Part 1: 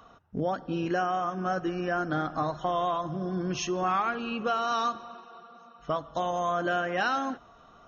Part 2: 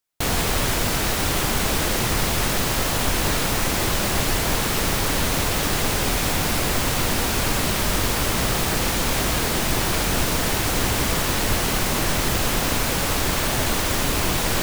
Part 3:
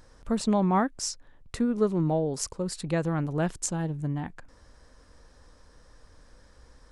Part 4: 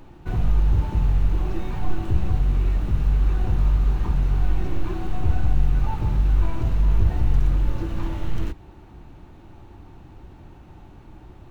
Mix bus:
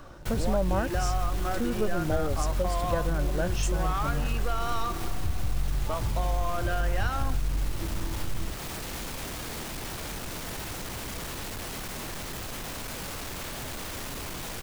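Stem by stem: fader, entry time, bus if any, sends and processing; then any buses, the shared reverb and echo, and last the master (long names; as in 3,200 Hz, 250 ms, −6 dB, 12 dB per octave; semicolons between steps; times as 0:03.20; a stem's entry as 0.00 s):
−1.0 dB, 0.00 s, no send, leveller curve on the samples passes 1; high-pass filter 290 Hz
−5.0 dB, 0.05 s, no send, brickwall limiter −17 dBFS, peak gain reduction 8.5 dB; soft clipping −28 dBFS, distortion −10 dB
−0.5 dB, 0.00 s, no send, hollow resonant body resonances 570/1,500 Hz, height 15 dB
−5.0 dB, 0.00 s, no send, bass and treble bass +2 dB, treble +11 dB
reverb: not used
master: downward compressor 2 to 1, threshold −28 dBFS, peak gain reduction 9 dB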